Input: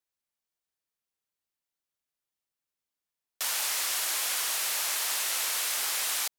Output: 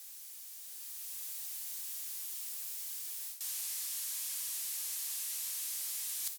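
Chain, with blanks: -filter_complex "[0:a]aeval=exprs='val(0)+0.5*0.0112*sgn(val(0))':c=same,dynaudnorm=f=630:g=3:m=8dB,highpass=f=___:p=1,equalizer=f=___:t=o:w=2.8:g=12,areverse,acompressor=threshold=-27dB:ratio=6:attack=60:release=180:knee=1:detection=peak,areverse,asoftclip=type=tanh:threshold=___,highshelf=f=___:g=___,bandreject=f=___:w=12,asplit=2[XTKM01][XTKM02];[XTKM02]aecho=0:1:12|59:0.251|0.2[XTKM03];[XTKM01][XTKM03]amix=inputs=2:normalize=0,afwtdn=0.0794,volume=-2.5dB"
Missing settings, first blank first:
630, 13k, -16.5dB, 4.9k, 7, 1.4k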